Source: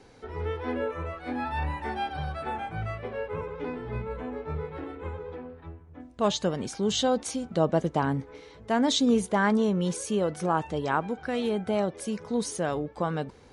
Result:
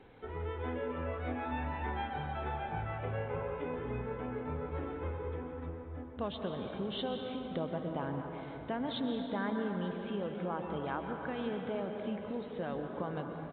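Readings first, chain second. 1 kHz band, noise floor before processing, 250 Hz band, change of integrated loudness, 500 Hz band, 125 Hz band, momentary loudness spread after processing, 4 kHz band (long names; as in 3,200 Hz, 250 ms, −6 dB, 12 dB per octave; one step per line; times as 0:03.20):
−8.5 dB, −52 dBFS, −9.0 dB, −9.0 dB, −8.5 dB, −6.5 dB, 5 LU, −12.0 dB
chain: downsampling to 8,000 Hz
downward compressor 3 to 1, threshold −34 dBFS, peak gain reduction 12 dB
dense smooth reverb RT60 3.7 s, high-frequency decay 0.5×, pre-delay 110 ms, DRR 3 dB
level −3 dB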